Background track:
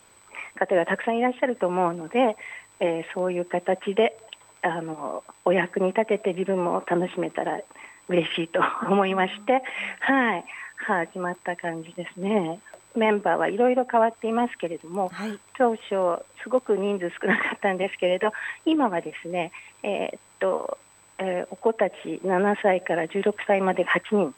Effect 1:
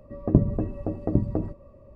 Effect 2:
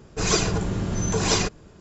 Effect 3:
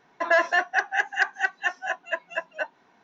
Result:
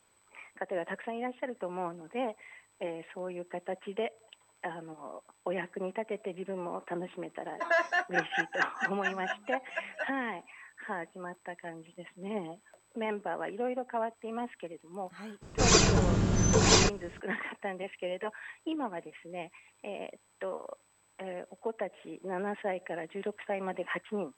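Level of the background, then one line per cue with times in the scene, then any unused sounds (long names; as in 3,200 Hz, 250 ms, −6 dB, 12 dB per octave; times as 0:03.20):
background track −13 dB
0:07.40: mix in 3 −7 dB
0:15.41: mix in 2 −0.5 dB, fades 0.02 s
not used: 1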